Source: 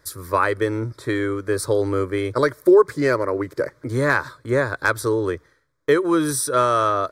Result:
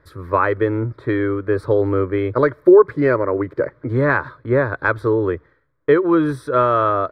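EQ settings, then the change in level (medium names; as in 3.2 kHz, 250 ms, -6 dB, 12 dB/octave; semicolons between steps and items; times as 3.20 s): distance through air 500 m; +4.5 dB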